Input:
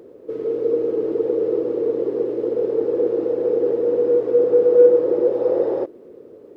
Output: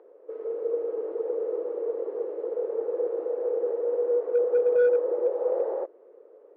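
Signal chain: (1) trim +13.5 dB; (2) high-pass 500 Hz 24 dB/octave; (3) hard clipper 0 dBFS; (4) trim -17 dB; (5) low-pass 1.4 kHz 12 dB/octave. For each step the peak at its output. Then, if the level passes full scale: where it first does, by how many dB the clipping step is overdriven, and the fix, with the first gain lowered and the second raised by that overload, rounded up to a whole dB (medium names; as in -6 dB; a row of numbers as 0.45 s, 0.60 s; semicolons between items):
+10.0 dBFS, +6.5 dBFS, 0.0 dBFS, -17.0 dBFS, -16.5 dBFS; step 1, 6.5 dB; step 1 +6.5 dB, step 4 -10 dB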